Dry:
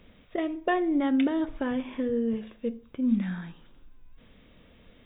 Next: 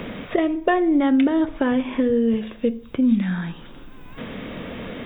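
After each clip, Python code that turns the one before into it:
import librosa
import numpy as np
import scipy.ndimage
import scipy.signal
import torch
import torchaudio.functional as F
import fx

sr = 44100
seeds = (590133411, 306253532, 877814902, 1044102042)

y = fx.band_squash(x, sr, depth_pct=70)
y = y * 10.0 ** (8.0 / 20.0)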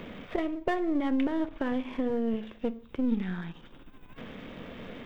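y = np.where(x < 0.0, 10.0 ** (-7.0 / 20.0) * x, x)
y = y * 10.0 ** (-7.5 / 20.0)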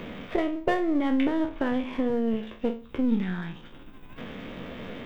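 y = fx.spec_trails(x, sr, decay_s=0.33)
y = y * 10.0 ** (3.0 / 20.0)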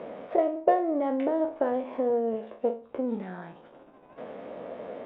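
y = fx.bandpass_q(x, sr, hz=620.0, q=2.5)
y = y * 10.0 ** (7.5 / 20.0)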